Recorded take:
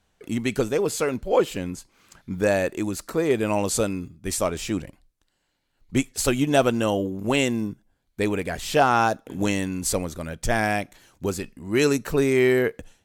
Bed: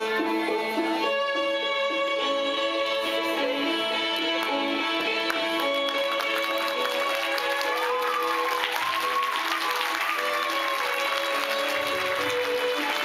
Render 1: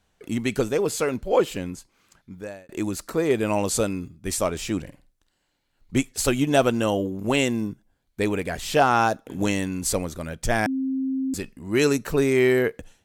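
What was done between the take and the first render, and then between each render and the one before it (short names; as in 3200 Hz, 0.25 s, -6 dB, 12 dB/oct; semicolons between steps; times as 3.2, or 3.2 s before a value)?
1.51–2.69 fade out; 4.81–5.97 flutter echo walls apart 8.6 m, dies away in 0.28 s; 10.66–11.34 bleep 265 Hz -22.5 dBFS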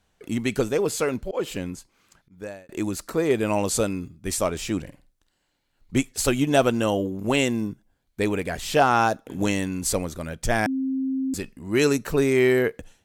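1.06–2.42 auto swell 0.19 s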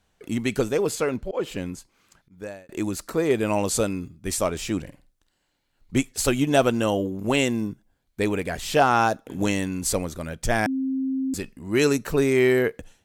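0.95–1.58 high shelf 4800 Hz -6.5 dB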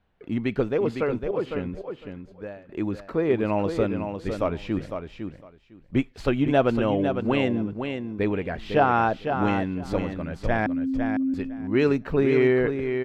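air absorption 360 m; feedback echo 0.505 s, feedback 16%, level -7 dB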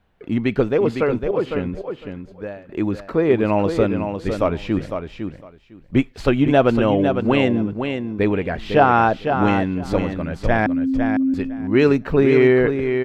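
gain +6 dB; limiter -3 dBFS, peak gain reduction 1 dB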